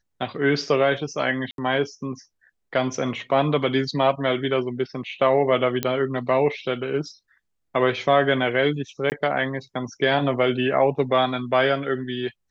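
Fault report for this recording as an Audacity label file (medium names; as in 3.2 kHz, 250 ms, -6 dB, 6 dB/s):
1.510000	1.580000	dropout 72 ms
5.830000	5.830000	pop -8 dBFS
9.100000	9.120000	dropout 19 ms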